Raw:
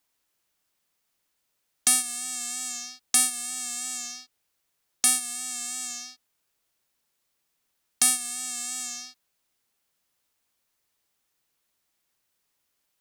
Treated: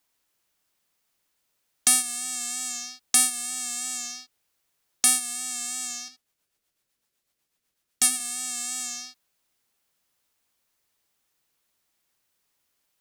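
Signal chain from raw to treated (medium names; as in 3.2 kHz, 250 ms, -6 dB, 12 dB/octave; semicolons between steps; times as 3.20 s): 6.08–8.20 s: rotary cabinet horn 8 Hz; trim +1.5 dB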